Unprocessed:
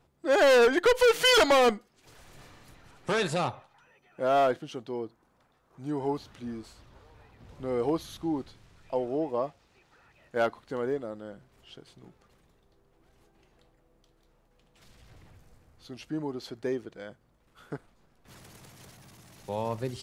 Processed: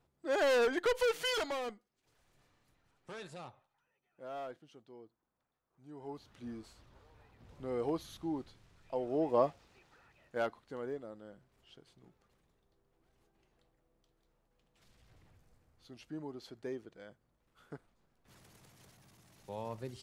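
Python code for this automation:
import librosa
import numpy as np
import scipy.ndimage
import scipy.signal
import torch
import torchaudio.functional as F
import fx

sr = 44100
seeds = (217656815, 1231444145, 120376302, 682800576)

y = fx.gain(x, sr, db=fx.line((1.01, -9.0), (1.75, -19.5), (5.89, -19.5), (6.46, -7.0), (8.98, -7.0), (9.42, 2.0), (10.63, -10.0)))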